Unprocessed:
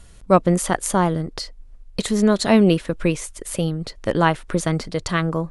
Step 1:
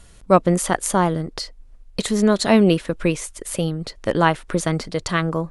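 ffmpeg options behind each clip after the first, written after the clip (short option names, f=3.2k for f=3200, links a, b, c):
-af "lowshelf=f=170:g=-3.5,volume=1dB"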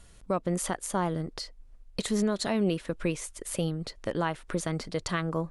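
-af "alimiter=limit=-11.5dB:level=0:latency=1:release=210,volume=-6.5dB"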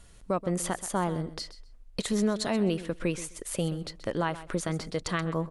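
-af "aecho=1:1:129|258:0.178|0.032"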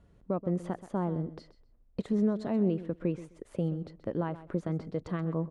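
-af "bandpass=f=210:t=q:w=0.51:csg=0"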